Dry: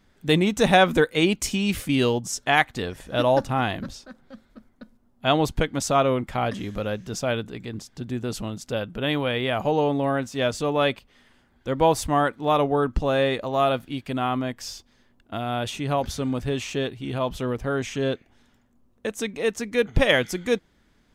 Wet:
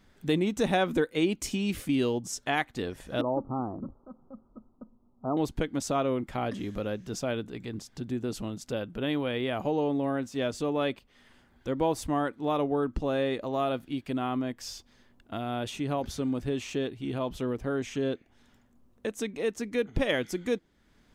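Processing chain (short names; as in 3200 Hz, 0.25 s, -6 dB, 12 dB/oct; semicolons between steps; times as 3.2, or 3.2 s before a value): dynamic EQ 310 Hz, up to +7 dB, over -37 dBFS, Q 1.2; compressor 1.5:1, threshold -42 dBFS, peak gain reduction 11.5 dB; 3.21–5.37 rippled Chebyshev low-pass 1300 Hz, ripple 3 dB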